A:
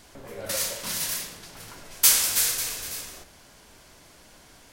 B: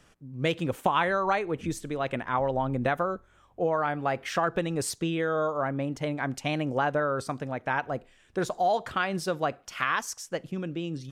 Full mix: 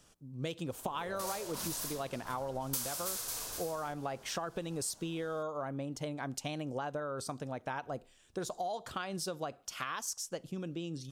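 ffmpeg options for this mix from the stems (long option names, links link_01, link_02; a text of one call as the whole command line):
ffmpeg -i stem1.wav -i stem2.wav -filter_complex "[0:a]equalizer=frequency=1100:width_type=o:width=1.8:gain=8.5,adelay=700,volume=-6dB[link_01];[1:a]tiltshelf=frequency=1300:gain=-4.5,volume=-1dB[link_02];[link_01][link_02]amix=inputs=2:normalize=0,equalizer=frequency=2000:width_type=o:width=1.3:gain=-11,acompressor=threshold=-34dB:ratio=6" out.wav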